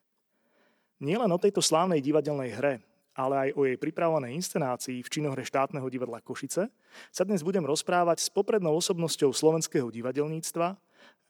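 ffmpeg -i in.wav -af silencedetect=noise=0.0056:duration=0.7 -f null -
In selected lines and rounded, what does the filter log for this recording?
silence_start: 0.00
silence_end: 1.01 | silence_duration: 1.01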